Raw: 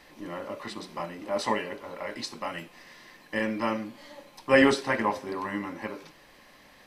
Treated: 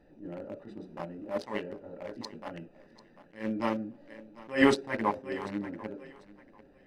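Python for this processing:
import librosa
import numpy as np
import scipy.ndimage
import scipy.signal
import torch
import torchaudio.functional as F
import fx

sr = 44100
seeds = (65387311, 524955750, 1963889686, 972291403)

y = fx.wiener(x, sr, points=41)
y = fx.echo_thinned(y, sr, ms=743, feedback_pct=22, hz=160.0, wet_db=-19)
y = fx.attack_slew(y, sr, db_per_s=190.0)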